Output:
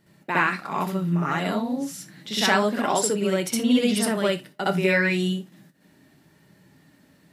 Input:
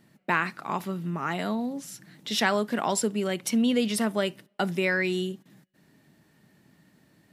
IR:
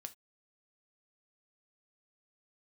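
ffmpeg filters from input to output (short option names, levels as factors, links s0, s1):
-filter_complex "[0:a]flanger=delay=2:depth=5.6:regen=-65:speed=0.31:shape=sinusoidal,asplit=2[s0][s1];[1:a]atrim=start_sample=2205,adelay=64[s2];[s1][s2]afir=irnorm=-1:irlink=0,volume=3.35[s3];[s0][s3]amix=inputs=2:normalize=0,volume=1.26"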